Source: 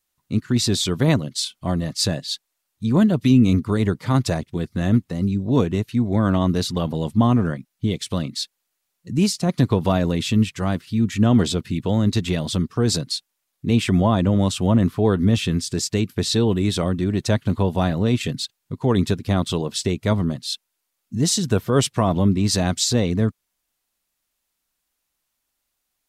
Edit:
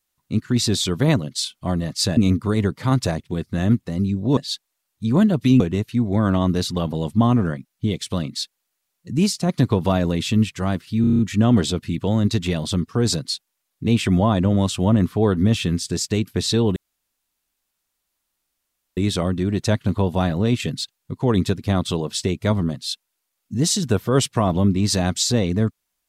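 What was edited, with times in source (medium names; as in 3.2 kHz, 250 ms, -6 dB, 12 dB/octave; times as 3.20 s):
2.17–3.40 s: move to 5.60 s
11.01 s: stutter 0.03 s, 7 plays
16.58 s: insert room tone 2.21 s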